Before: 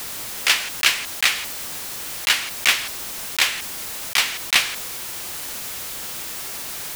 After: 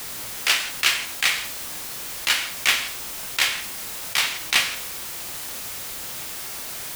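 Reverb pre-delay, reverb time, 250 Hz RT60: 6 ms, 0.50 s, 0.45 s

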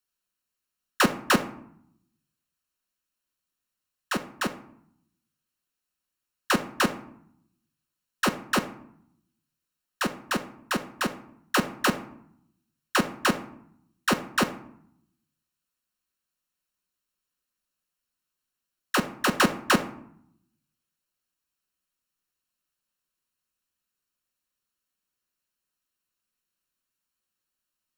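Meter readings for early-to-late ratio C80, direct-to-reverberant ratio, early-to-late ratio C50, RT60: 17.0 dB, 6.0 dB, 13.5 dB, 0.70 s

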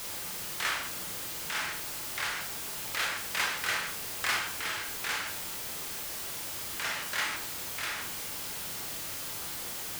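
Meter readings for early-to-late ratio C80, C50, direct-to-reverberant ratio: 11.0 dB, 6.5 dB, 1.0 dB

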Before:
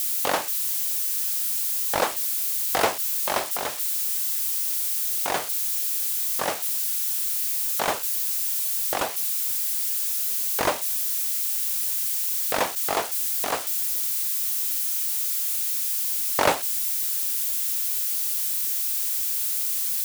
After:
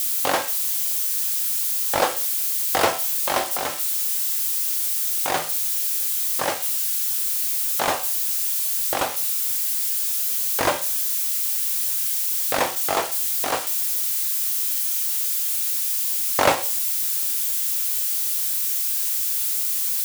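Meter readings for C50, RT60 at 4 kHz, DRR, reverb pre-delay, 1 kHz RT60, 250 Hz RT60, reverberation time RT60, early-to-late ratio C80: 14.5 dB, 0.40 s, 7.5 dB, 4 ms, 0.45 s, 0.50 s, 0.45 s, 18.5 dB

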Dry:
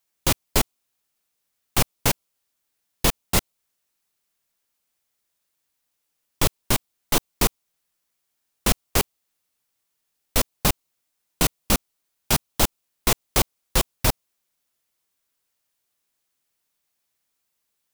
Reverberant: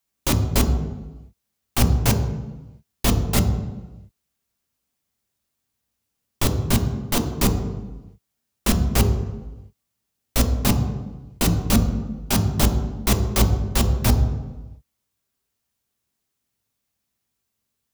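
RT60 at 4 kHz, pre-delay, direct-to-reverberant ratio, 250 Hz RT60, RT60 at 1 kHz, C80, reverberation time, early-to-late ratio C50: 0.85 s, 3 ms, 4.0 dB, 1.2 s, 1.1 s, 9.5 dB, 1.1 s, 8.0 dB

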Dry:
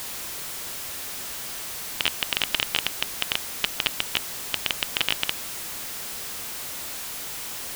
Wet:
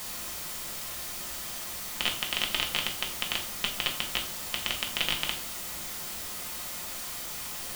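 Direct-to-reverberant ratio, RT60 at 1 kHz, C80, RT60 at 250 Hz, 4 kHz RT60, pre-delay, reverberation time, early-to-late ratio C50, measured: 0.0 dB, 0.50 s, 13.5 dB, 0.80 s, 0.40 s, 5 ms, 0.55 s, 9.5 dB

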